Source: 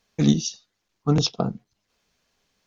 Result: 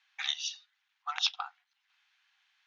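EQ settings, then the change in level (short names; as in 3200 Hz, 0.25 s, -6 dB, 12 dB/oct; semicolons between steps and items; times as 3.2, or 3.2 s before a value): brick-wall FIR high-pass 730 Hz; air absorption 85 m; band shelf 2300 Hz +9.5 dB; -4.5 dB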